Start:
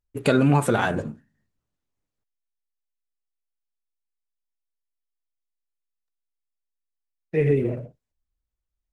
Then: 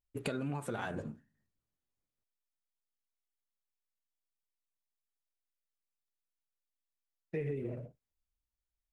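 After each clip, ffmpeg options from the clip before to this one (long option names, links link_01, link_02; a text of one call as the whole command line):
ffmpeg -i in.wav -af "acompressor=threshold=-26dB:ratio=6,volume=-8dB" out.wav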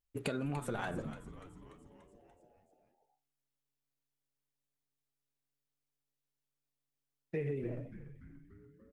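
ffmpeg -i in.wav -filter_complex "[0:a]asplit=8[link_01][link_02][link_03][link_04][link_05][link_06][link_07][link_08];[link_02]adelay=291,afreqshift=-140,volume=-13dB[link_09];[link_03]adelay=582,afreqshift=-280,volume=-17dB[link_10];[link_04]adelay=873,afreqshift=-420,volume=-21dB[link_11];[link_05]adelay=1164,afreqshift=-560,volume=-25dB[link_12];[link_06]adelay=1455,afreqshift=-700,volume=-29.1dB[link_13];[link_07]adelay=1746,afreqshift=-840,volume=-33.1dB[link_14];[link_08]adelay=2037,afreqshift=-980,volume=-37.1dB[link_15];[link_01][link_09][link_10][link_11][link_12][link_13][link_14][link_15]amix=inputs=8:normalize=0" out.wav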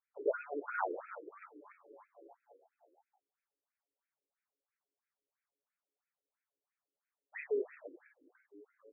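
ffmpeg -i in.wav -af "afftfilt=real='re*between(b*sr/1024,380*pow(1900/380,0.5+0.5*sin(2*PI*3*pts/sr))/1.41,380*pow(1900/380,0.5+0.5*sin(2*PI*3*pts/sr))*1.41)':imag='im*between(b*sr/1024,380*pow(1900/380,0.5+0.5*sin(2*PI*3*pts/sr))/1.41,380*pow(1900/380,0.5+0.5*sin(2*PI*3*pts/sr))*1.41)':win_size=1024:overlap=0.75,volume=8.5dB" out.wav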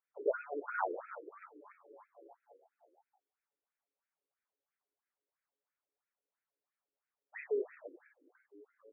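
ffmpeg -i in.wav -af "highpass=300,lowpass=2100,volume=1dB" out.wav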